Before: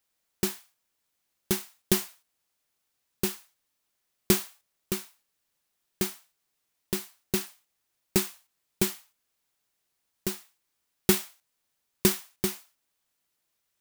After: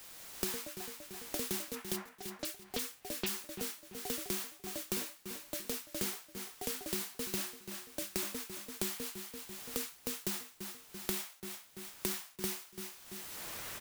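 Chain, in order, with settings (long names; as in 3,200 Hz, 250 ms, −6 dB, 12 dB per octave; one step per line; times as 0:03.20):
0:01.95–0:03.26: low-pass filter 1,800 Hz → 3,700 Hz 24 dB per octave
automatic gain control gain up to 15 dB
brickwall limiter −19.5 dBFS, peak gain reduction 18.5 dB
flanger 0.2 Hz, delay 5.5 ms, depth 9.7 ms, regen −72%
delay with pitch and tempo change per echo 196 ms, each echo +4 semitones, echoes 3, each echo −6 dB
repeating echo 338 ms, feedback 20%, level −16 dB
multiband upward and downward compressor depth 100%
level +1 dB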